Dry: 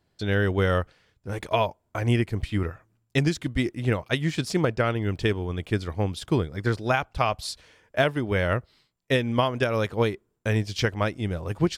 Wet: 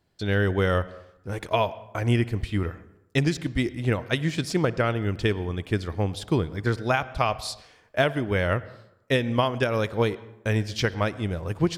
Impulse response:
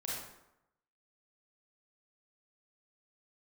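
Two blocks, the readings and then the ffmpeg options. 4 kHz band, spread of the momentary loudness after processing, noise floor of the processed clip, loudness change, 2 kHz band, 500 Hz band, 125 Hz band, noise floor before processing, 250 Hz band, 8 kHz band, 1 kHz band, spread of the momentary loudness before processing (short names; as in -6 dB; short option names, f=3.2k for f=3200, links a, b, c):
0.0 dB, 7 LU, -60 dBFS, 0.0 dB, 0.0 dB, 0.0 dB, 0.0 dB, -73 dBFS, 0.0 dB, 0.0 dB, 0.0 dB, 6 LU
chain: -filter_complex "[0:a]asplit=2[a][b];[1:a]atrim=start_sample=2205,lowpass=5.2k,adelay=59[c];[b][c]afir=irnorm=-1:irlink=0,volume=-18.5dB[d];[a][d]amix=inputs=2:normalize=0"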